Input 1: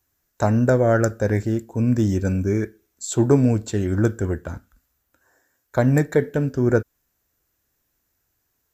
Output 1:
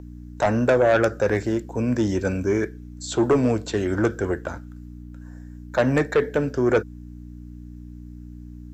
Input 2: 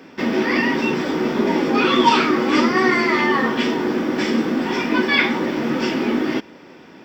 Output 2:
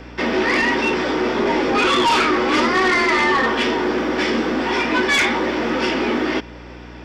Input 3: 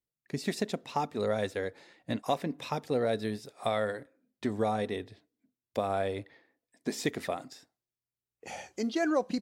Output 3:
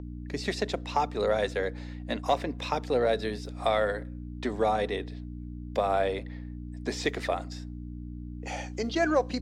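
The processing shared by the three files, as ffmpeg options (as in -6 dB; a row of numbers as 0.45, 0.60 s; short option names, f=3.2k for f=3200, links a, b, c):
-filter_complex "[0:a]aeval=exprs='val(0)+0.0251*(sin(2*PI*60*n/s)+sin(2*PI*2*60*n/s)/2+sin(2*PI*3*60*n/s)/3+sin(2*PI*4*60*n/s)/4+sin(2*PI*5*60*n/s)/5)':c=same,acrossover=split=330 7700:gain=0.251 1 0.251[a][b][c];[a][b][c]amix=inputs=3:normalize=0,asoftclip=type=tanh:threshold=-9.5dB,acrossover=split=6400[d][e];[e]acompressor=threshold=-53dB:ratio=4:attack=1:release=60[f];[d][f]amix=inputs=2:normalize=0,aeval=exprs='0.355*sin(PI/2*1.78*val(0)/0.355)':c=same,volume=-3.5dB"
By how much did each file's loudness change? -1.5, +0.5, +3.5 LU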